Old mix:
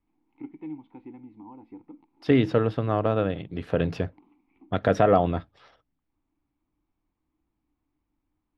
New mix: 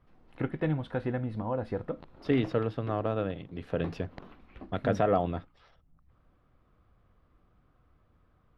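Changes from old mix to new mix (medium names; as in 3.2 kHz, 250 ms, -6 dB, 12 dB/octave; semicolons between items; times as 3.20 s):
first voice: remove vowel filter u; second voice -6.5 dB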